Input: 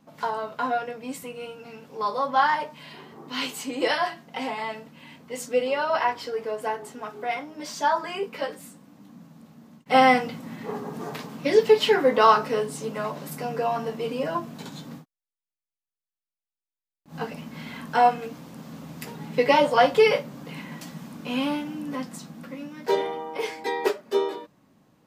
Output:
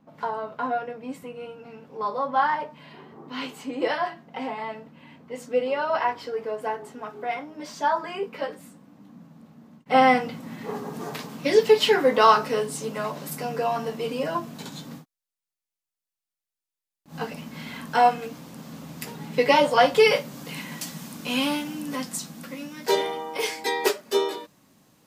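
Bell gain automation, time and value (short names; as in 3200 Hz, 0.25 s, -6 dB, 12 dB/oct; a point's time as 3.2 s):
bell 11000 Hz 2.8 oct
5.32 s -12.5 dB
5.83 s -6.5 dB
9.95 s -6.5 dB
10.76 s +4.5 dB
19.86 s +4.5 dB
20.4 s +12.5 dB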